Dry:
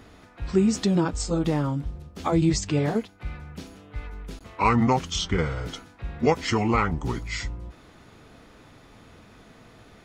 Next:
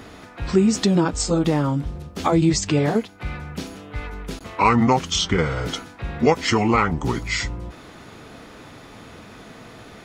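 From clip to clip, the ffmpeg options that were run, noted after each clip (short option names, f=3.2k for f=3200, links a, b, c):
-filter_complex "[0:a]lowshelf=f=76:g=-9.5,asplit=2[a][b];[b]acompressor=threshold=-31dB:ratio=6,volume=3dB[c];[a][c]amix=inputs=2:normalize=0,volume=2dB"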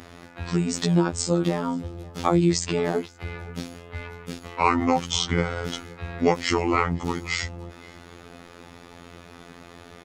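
-filter_complex "[0:a]afftfilt=real='hypot(re,im)*cos(PI*b)':imag='0':win_size=2048:overlap=0.75,asplit=2[a][b];[b]adelay=524.8,volume=-20dB,highshelf=f=4k:g=-11.8[c];[a][c]amix=inputs=2:normalize=0"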